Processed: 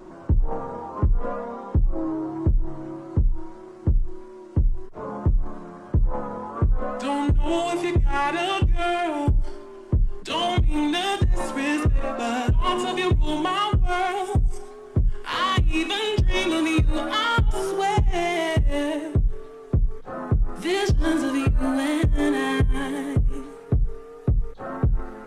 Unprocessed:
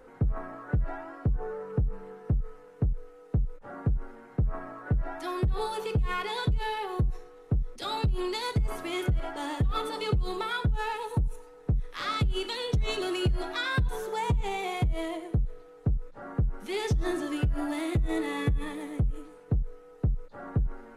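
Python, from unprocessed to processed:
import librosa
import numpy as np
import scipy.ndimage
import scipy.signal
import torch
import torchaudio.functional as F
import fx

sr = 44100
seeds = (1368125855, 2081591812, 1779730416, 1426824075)

p1 = fx.speed_glide(x, sr, from_pct=71, to_pct=95)
p2 = 10.0 ** (-33.0 / 20.0) * np.tanh(p1 / 10.0 ** (-33.0 / 20.0))
p3 = p1 + (p2 * librosa.db_to_amplitude(-3.0))
p4 = fx.vibrato(p3, sr, rate_hz=1.7, depth_cents=27.0)
p5 = fx.hum_notches(p4, sr, base_hz=50, count=4)
y = p5 * librosa.db_to_amplitude(5.5)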